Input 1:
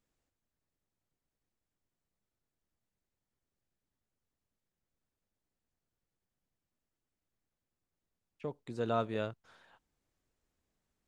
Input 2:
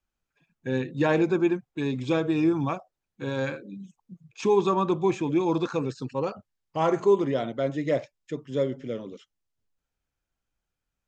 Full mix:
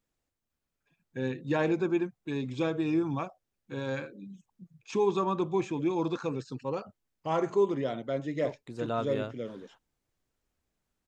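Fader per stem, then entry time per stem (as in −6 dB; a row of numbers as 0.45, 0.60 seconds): +0.5, −5.0 decibels; 0.00, 0.50 seconds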